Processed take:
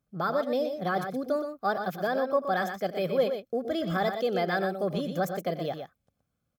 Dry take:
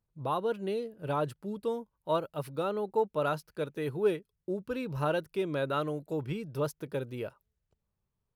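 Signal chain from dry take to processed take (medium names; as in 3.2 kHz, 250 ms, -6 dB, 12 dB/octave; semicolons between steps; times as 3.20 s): in parallel at -1.5 dB: peak limiter -27 dBFS, peak gain reduction 10 dB; on the sum: comb of notches 750 Hz; tape speed +27%; multi-tap echo 88/121 ms -17.5/-7.5 dB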